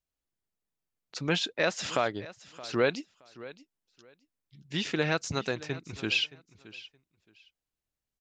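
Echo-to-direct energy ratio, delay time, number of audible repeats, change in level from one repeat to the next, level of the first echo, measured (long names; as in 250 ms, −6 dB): −18.0 dB, 621 ms, 2, −14.5 dB, −18.0 dB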